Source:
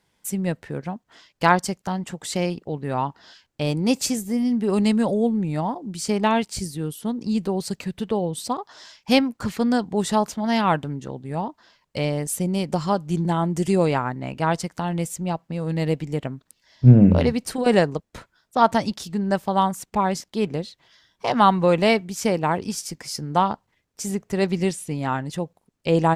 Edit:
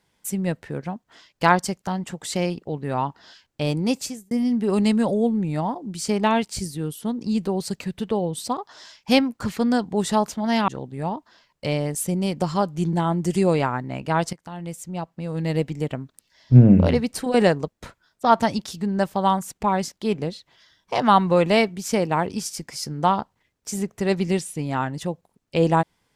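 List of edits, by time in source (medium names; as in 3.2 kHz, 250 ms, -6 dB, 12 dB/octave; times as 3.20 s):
3.78–4.31 s: fade out
10.68–11.00 s: delete
14.65–15.91 s: fade in, from -13.5 dB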